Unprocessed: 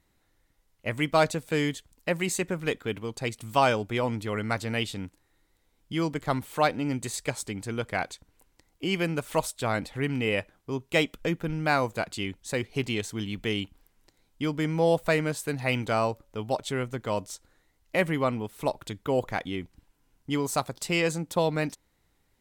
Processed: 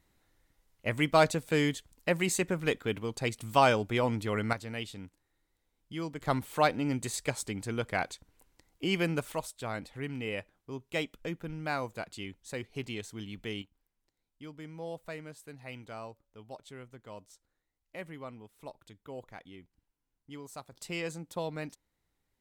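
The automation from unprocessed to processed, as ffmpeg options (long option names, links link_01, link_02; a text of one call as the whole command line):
ffmpeg -i in.wav -af "asetnsamples=nb_out_samples=441:pad=0,asendcmd='4.53 volume volume -9dB;6.21 volume volume -2dB;9.32 volume volume -9dB;13.62 volume volume -17.5dB;20.72 volume volume -10.5dB',volume=-1dB" out.wav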